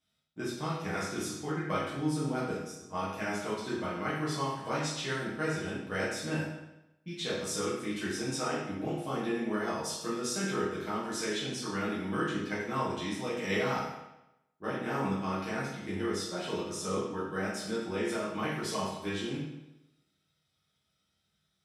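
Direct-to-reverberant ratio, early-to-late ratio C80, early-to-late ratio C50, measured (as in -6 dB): -10.0 dB, 4.0 dB, 1.0 dB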